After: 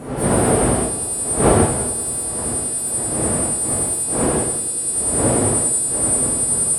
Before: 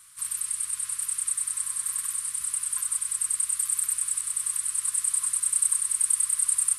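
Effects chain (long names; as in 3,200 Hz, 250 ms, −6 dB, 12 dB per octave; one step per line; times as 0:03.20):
every partial snapped to a pitch grid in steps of 2 semitones
wind on the microphone 500 Hz −18 dBFS
high-pass filter 43 Hz
on a send: bucket-brigade delay 96 ms, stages 1,024, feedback 84%, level −19.5 dB
on the sum: reverb whose tail is shaped and stops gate 190 ms flat, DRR −2.5 dB
level −8 dB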